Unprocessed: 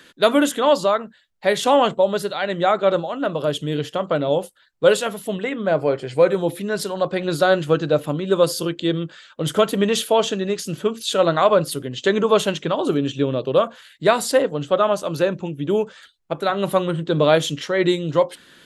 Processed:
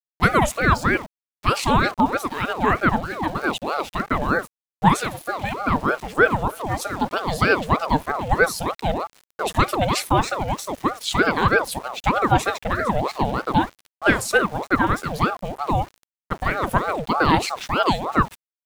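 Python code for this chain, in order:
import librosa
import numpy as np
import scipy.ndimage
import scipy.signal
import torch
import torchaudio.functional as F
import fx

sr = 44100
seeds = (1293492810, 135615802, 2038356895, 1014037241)

y = fx.filter_lfo_notch(x, sr, shape='square', hz=0.5, low_hz=970.0, high_hz=3800.0, q=2.8)
y = np.where(np.abs(y) >= 10.0 ** (-36.0 / 20.0), y, 0.0)
y = fx.ring_lfo(y, sr, carrier_hz=660.0, swing_pct=55, hz=3.2)
y = y * 10.0 ** (1.5 / 20.0)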